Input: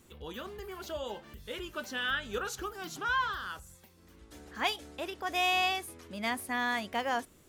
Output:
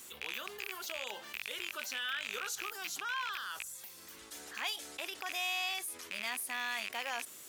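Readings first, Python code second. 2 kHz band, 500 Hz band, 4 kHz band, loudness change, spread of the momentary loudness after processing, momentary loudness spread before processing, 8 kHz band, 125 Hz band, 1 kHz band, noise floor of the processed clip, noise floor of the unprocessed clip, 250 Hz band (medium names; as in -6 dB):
-3.5 dB, -10.0 dB, -1.5 dB, -4.5 dB, 8 LU, 14 LU, +4.0 dB, under -15 dB, -8.5 dB, -53 dBFS, -60 dBFS, -15.0 dB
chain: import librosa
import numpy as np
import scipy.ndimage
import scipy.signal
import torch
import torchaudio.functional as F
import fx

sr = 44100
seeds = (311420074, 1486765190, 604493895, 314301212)

y = fx.rattle_buzz(x, sr, strikes_db=-47.0, level_db=-25.0)
y = fx.highpass(y, sr, hz=1100.0, slope=6)
y = fx.high_shelf(y, sr, hz=4100.0, db=8.5)
y = fx.env_flatten(y, sr, amount_pct=50)
y = F.gain(torch.from_numpy(y), -8.0).numpy()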